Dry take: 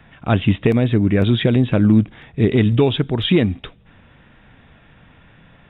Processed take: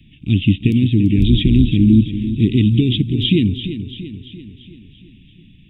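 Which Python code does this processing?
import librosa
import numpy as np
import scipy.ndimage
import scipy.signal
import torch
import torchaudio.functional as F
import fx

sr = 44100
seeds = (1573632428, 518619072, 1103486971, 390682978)

y = fx.octave_divider(x, sr, octaves=2, level_db=-3.0, at=(1.18, 1.7))
y = scipy.signal.sosfilt(scipy.signal.ellip(3, 1.0, 40, [310.0, 2700.0], 'bandstop', fs=sr, output='sos'), y)
y = fx.echo_feedback(y, sr, ms=340, feedback_pct=54, wet_db=-11.0)
y = y * 10.0 ** (3.0 / 20.0)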